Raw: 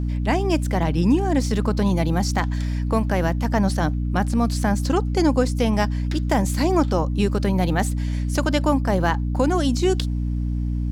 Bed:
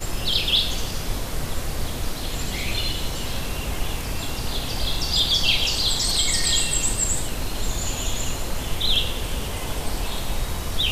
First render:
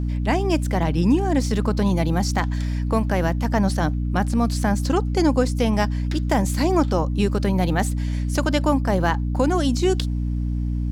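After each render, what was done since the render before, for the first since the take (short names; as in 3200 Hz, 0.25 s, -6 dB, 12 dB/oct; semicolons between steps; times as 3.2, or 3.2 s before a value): nothing audible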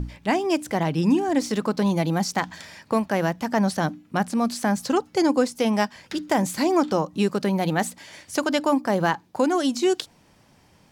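notches 60/120/180/240/300 Hz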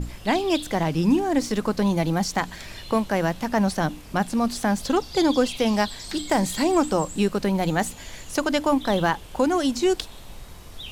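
add bed -15.5 dB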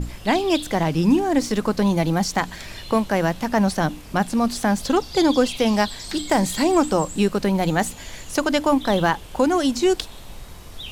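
gain +2.5 dB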